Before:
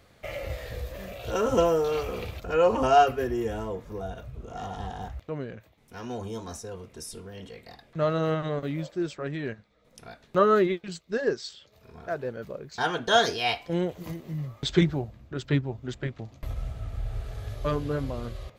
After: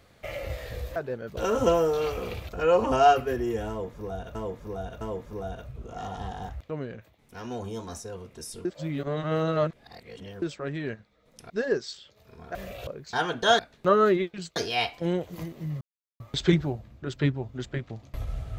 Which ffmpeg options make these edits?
-filter_complex "[0:a]asplit=13[s0][s1][s2][s3][s4][s5][s6][s7][s8][s9][s10][s11][s12];[s0]atrim=end=0.962[s13];[s1]atrim=start=12.108:end=12.522[s14];[s2]atrim=start=1.278:end=4.262[s15];[s3]atrim=start=3.598:end=4.262[s16];[s4]atrim=start=3.598:end=7.242[s17];[s5]atrim=start=7.238:end=9.012,asetpts=PTS-STARTPTS,areverse[s18];[s6]atrim=start=9.008:end=10.092[s19];[s7]atrim=start=11.058:end=12.112[s20];[s8]atrim=start=0.958:end=1.282[s21];[s9]atrim=start=12.518:end=13.242[s22];[s10]atrim=start=10.088:end=11.062[s23];[s11]atrim=start=13.238:end=14.49,asetpts=PTS-STARTPTS,afade=t=out:st=1.248:d=0.004:c=hsin,apad=pad_dur=0.39[s24];[s12]atrim=start=14.49,asetpts=PTS-STARTPTS,afade=t=in:d=0.004:c=hsin[s25];[s13][s14]acrossfade=d=0.004:c1=hsin:c2=hsin[s26];[s26][s15]acrossfade=d=0.004:c1=hsin:c2=hsin[s27];[s27][s16]acrossfade=d=0.004:c1=hsin:c2=hsin[s28];[s28][s17]acrossfade=d=0.004:c1=hsin:c2=hsin[s29];[s29][s18]acrossfade=d=0.004:c1=hsin:c2=hsin[s30];[s30][s19]acrossfade=d=0.004:c1=hsin:c2=hsin[s31];[s31][s20]acrossfade=d=0.004:c1=hsin:c2=hsin[s32];[s32][s21]acrossfade=d=0.004:c1=hsin:c2=hsin[s33];[s33][s22]acrossfade=d=0.004:c1=hsin:c2=hsin[s34];[s34][s23]acrossfade=d=0.004:c1=hsin:c2=hsin[s35];[s24][s25]concat=n=2:v=0:a=1[s36];[s35][s36]acrossfade=d=0.004:c1=hsin:c2=hsin"

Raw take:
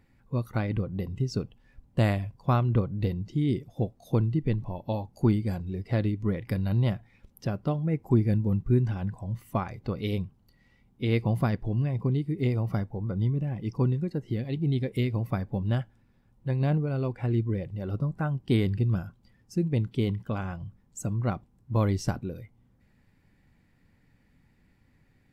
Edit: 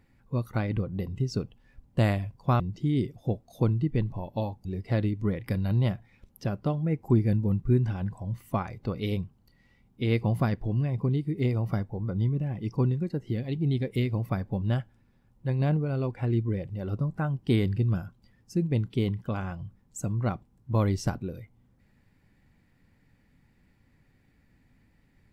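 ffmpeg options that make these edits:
-filter_complex "[0:a]asplit=3[s0][s1][s2];[s0]atrim=end=2.602[s3];[s1]atrim=start=3.118:end=5.172[s4];[s2]atrim=start=5.658[s5];[s3][s4]acrossfade=d=0.004:c1=hsin:c2=hsin[s6];[s6][s5]acrossfade=d=0.004:c1=hsin:c2=hsin"

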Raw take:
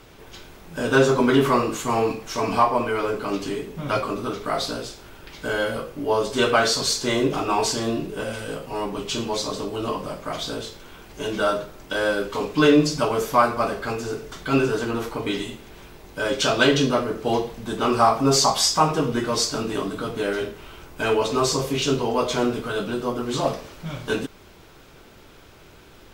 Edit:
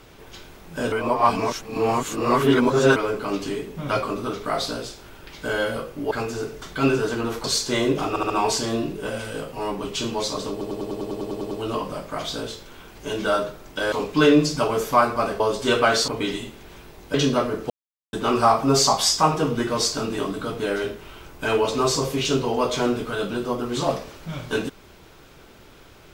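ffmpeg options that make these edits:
-filter_complex "[0:a]asplit=24[s0][s1][s2][s3][s4][s5][s6][s7][s8][s9][s10][s11][s12][s13][s14][s15][s16][s17][s18][s19][s20][s21][s22][s23];[s0]atrim=end=0.922[s24];[s1]atrim=start=0.918:end=2.962,asetpts=PTS-STARTPTS,areverse[s25];[s2]atrim=start=2.958:end=6.112[s26];[s3]atrim=start=13.808:end=15.142[s27];[s4]atrim=start=6.788:end=7.512[s28];[s5]atrim=start=7.438:end=7.512[s29];[s6]atrim=start=7.438:end=7.512[s30];[s7]atrim=start=7.438:end=9.752[s31];[s8]atrim=start=9.648:end=9.752[s32];[s9]atrim=start=9.648:end=9.752[s33];[s10]atrim=start=9.648:end=9.752[s34];[s11]atrim=start=9.648:end=9.752[s35];[s12]atrim=start=9.648:end=9.752[s36];[s13]atrim=start=9.648:end=9.752[s37];[s14]atrim=start=9.648:end=9.752[s38];[s15]atrim=start=9.648:end=9.752[s39];[s16]atrim=start=9.648:end=9.752[s40];[s17]atrim=start=9.648:end=12.062[s41];[s18]atrim=start=12.328:end=13.812[s42];[s19]atrim=start=6.108:end=6.792[s43];[s20]atrim=start=15.138:end=16.202[s44];[s21]atrim=start=16.708:end=17.27,asetpts=PTS-STARTPTS,afade=t=out:st=0.558:d=0.004:c=hsin[s45];[s22]atrim=start=17.27:end=17.7,asetpts=PTS-STARTPTS,volume=0[s46];[s23]atrim=start=17.7,asetpts=PTS-STARTPTS,afade=t=in:d=0.004:c=hsin[s47];[s24][s25]acrossfade=d=0.004:c1=hsin:c2=hsin[s48];[s48][s26]acrossfade=d=0.004:c1=hsin:c2=hsin[s49];[s49][s27]acrossfade=d=0.004:c1=hsin:c2=hsin[s50];[s50][s28]acrossfade=d=0.004:c1=hsin:c2=hsin[s51];[s51][s29]acrossfade=d=0.004:c1=hsin:c2=hsin[s52];[s52][s30]acrossfade=d=0.004:c1=hsin:c2=hsin[s53];[s53][s31]acrossfade=d=0.004:c1=hsin:c2=hsin[s54];[s54][s32]acrossfade=d=0.004:c1=hsin:c2=hsin[s55];[s55][s33]acrossfade=d=0.004:c1=hsin:c2=hsin[s56];[s56][s34]acrossfade=d=0.004:c1=hsin:c2=hsin[s57];[s57][s35]acrossfade=d=0.004:c1=hsin:c2=hsin[s58];[s58][s36]acrossfade=d=0.004:c1=hsin:c2=hsin[s59];[s59][s37]acrossfade=d=0.004:c1=hsin:c2=hsin[s60];[s60][s38]acrossfade=d=0.004:c1=hsin:c2=hsin[s61];[s61][s39]acrossfade=d=0.004:c1=hsin:c2=hsin[s62];[s62][s40]acrossfade=d=0.004:c1=hsin:c2=hsin[s63];[s63][s41]acrossfade=d=0.004:c1=hsin:c2=hsin[s64];[s64][s42]acrossfade=d=0.004:c1=hsin:c2=hsin[s65];[s65][s43]acrossfade=d=0.004:c1=hsin:c2=hsin[s66];[s66][s44]acrossfade=d=0.004:c1=hsin:c2=hsin[s67];[s45][s46][s47]concat=n=3:v=0:a=1[s68];[s67][s68]acrossfade=d=0.004:c1=hsin:c2=hsin"

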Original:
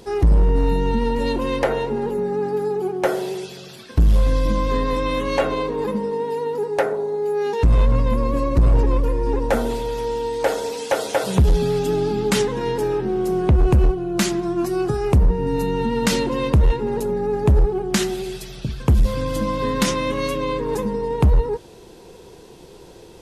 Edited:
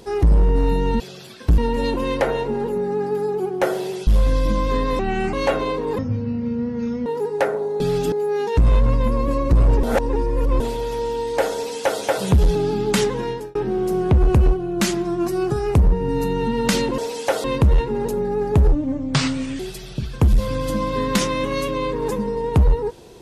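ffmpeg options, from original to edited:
-filter_complex "[0:a]asplit=18[s0][s1][s2][s3][s4][s5][s6][s7][s8][s9][s10][s11][s12][s13][s14][s15][s16][s17];[s0]atrim=end=1.002[s18];[s1]atrim=start=3.488:end=4.072[s19];[s2]atrim=start=0.998:end=3.492[s20];[s3]atrim=start=4.068:end=4.994[s21];[s4]atrim=start=4.99:end=5.24,asetpts=PTS-STARTPTS,asetrate=32193,aresample=44100[s22];[s5]atrim=start=5.236:end=5.894[s23];[s6]atrim=start=5.89:end=6.44,asetpts=PTS-STARTPTS,asetrate=22491,aresample=44100[s24];[s7]atrim=start=6.436:end=7.182[s25];[s8]atrim=start=11.608:end=11.932[s26];[s9]atrim=start=7.178:end=8.892[s27];[s10]atrim=start=8.888:end=9.662,asetpts=PTS-STARTPTS,areverse[s28];[s11]atrim=start=9.658:end=11.612[s29];[s12]atrim=start=11.928:end=12.93,asetpts=PTS-STARTPTS,afade=t=out:st=0.652:d=0.35[s30];[s13]atrim=start=12.93:end=16.362,asetpts=PTS-STARTPTS,afade=t=in:d=0.004:c=hsin[s31];[s14]atrim=start=10.608:end=11.072[s32];[s15]atrim=start=16.358:end=17.644[s33];[s16]atrim=start=17.64:end=18.26,asetpts=PTS-STARTPTS,asetrate=31311,aresample=44100[s34];[s17]atrim=start=18.256[s35];[s18][s19]acrossfade=d=0.004:c1=hsin:c2=hsin[s36];[s36][s20]acrossfade=d=0.004:c1=hsin:c2=hsin[s37];[s37][s21]acrossfade=d=0.004:c1=hsin:c2=hsin[s38];[s38][s22]acrossfade=d=0.004:c1=hsin:c2=hsin[s39];[s39][s23]acrossfade=d=0.004:c1=hsin:c2=hsin[s40];[s40][s24]acrossfade=d=0.004:c1=hsin:c2=hsin[s41];[s41][s25]acrossfade=d=0.004:c1=hsin:c2=hsin[s42];[s42][s26]acrossfade=d=0.004:c1=hsin:c2=hsin[s43];[s43][s27]acrossfade=d=0.004:c1=hsin:c2=hsin[s44];[s44][s28]acrossfade=d=0.004:c1=hsin:c2=hsin[s45];[s45][s29]acrossfade=d=0.004:c1=hsin:c2=hsin[s46];[s30][s31]concat=n=2:v=0:a=1[s47];[s46][s47]acrossfade=d=0.004:c1=hsin:c2=hsin[s48];[s48][s32]acrossfade=d=0.004:c1=hsin:c2=hsin[s49];[s49][s33]acrossfade=d=0.004:c1=hsin:c2=hsin[s50];[s50][s34]acrossfade=d=0.004:c1=hsin:c2=hsin[s51];[s51][s35]acrossfade=d=0.004:c1=hsin:c2=hsin"

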